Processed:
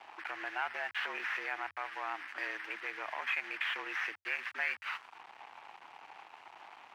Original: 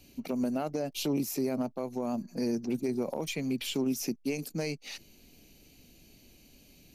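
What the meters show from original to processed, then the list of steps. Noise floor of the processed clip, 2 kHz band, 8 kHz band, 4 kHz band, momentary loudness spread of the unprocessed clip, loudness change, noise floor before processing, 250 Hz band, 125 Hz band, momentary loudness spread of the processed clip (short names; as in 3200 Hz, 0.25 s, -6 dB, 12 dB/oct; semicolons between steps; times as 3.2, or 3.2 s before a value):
-58 dBFS, +12.0 dB, under -20 dB, -4.0 dB, 5 LU, -4.0 dB, -59 dBFS, -26.0 dB, under -35 dB, 18 LU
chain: delta modulation 32 kbps, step -42.5 dBFS; auto-wah 620–1700 Hz, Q 3.7, up, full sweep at -34 dBFS; high shelf 3600 Hz +6 dB; in parallel at +2 dB: limiter -45 dBFS, peak gain reduction 9.5 dB; on the sum: crossover distortion -59 dBFS; band shelf 1400 Hz +12.5 dB 2.5 oct; frequency shift +88 Hz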